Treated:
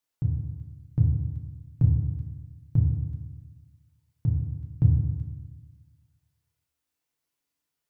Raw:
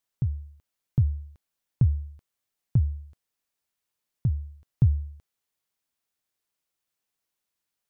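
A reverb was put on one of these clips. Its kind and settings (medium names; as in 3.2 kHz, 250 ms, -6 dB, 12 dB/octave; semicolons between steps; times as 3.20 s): FDN reverb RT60 1.2 s, low-frequency decay 1.3×, high-frequency decay 0.55×, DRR 0 dB; trim -2.5 dB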